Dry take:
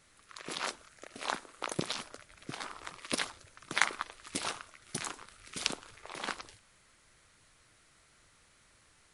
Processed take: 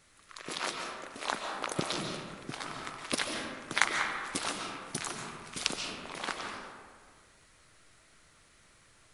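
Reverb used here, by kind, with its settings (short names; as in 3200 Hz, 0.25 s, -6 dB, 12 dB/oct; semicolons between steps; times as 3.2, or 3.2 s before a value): digital reverb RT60 1.8 s, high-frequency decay 0.45×, pre-delay 0.1 s, DRR 2 dB; gain +1 dB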